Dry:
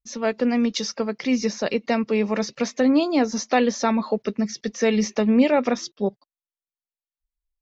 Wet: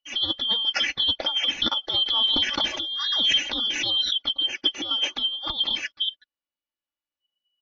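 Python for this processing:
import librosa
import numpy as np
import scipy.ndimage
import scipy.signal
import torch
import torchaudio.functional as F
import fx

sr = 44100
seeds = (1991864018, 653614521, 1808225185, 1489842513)

y = fx.band_shuffle(x, sr, order='2413')
y = scipy.signal.sosfilt(scipy.signal.butter(4, 5100.0, 'lowpass', fs=sr, output='sos'), y)
y = fx.high_shelf(y, sr, hz=3300.0, db=-5.5)
y = fx.over_compress(y, sr, threshold_db=-26.0, ratio=-0.5)
y = y + 0.6 * np.pad(y, (int(3.5 * sr / 1000.0), 0))[:len(y)]
y = fx.pre_swell(y, sr, db_per_s=28.0, at=(1.94, 4.17))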